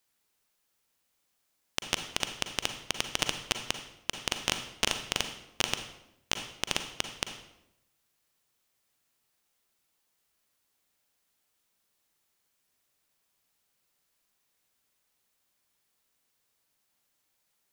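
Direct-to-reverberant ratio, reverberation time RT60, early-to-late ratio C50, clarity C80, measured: 7.0 dB, 0.85 s, 8.0 dB, 11.0 dB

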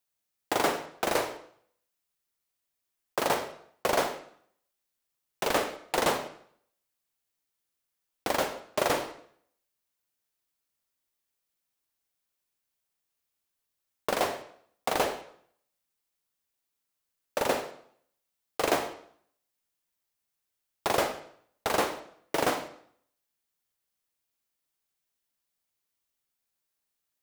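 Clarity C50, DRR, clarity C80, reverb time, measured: 10.0 dB, 9.0 dB, 13.5 dB, 0.60 s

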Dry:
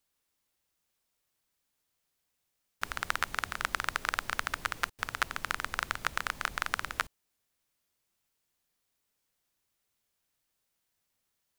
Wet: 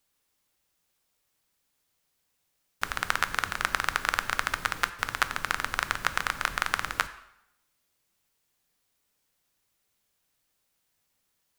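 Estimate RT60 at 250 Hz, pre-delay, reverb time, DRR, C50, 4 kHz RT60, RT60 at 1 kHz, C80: 0.85 s, 3 ms, 0.80 s, 11.0 dB, 14.5 dB, 0.70 s, 0.80 s, 16.5 dB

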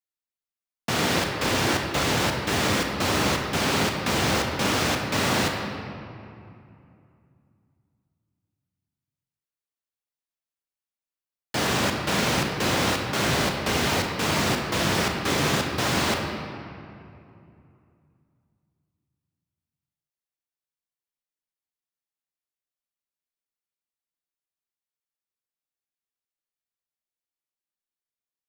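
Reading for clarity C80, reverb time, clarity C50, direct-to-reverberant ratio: 4.5 dB, 2.6 s, 3.5 dB, 2.5 dB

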